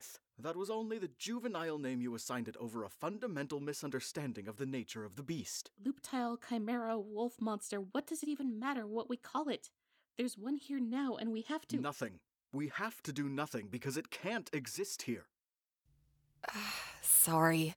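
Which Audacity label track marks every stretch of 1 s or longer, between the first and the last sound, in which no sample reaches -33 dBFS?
15.140000	16.450000	silence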